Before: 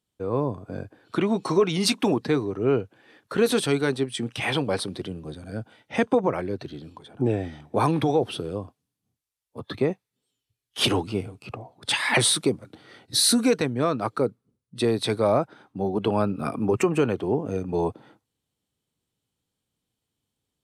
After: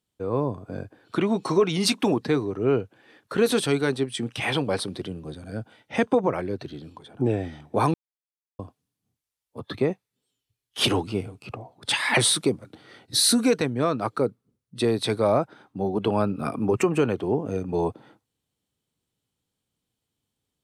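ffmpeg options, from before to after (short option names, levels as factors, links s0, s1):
-filter_complex "[0:a]asplit=3[s0][s1][s2];[s0]atrim=end=7.94,asetpts=PTS-STARTPTS,afade=t=out:st=7.936:d=0.004:c=hsin[s3];[s1]atrim=start=7.94:end=8.59,asetpts=PTS-STARTPTS,volume=0[s4];[s2]atrim=start=8.59,asetpts=PTS-STARTPTS,afade=t=in:d=0.004:c=hsin[s5];[s3][s4][s5]concat=n=3:v=0:a=1"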